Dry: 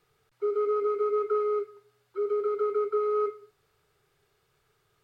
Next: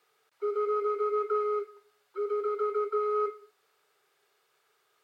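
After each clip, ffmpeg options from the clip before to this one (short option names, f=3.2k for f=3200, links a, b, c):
-af "highpass=480,volume=1.5dB"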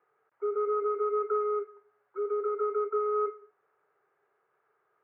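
-af "lowpass=f=1.7k:w=0.5412,lowpass=f=1.7k:w=1.3066"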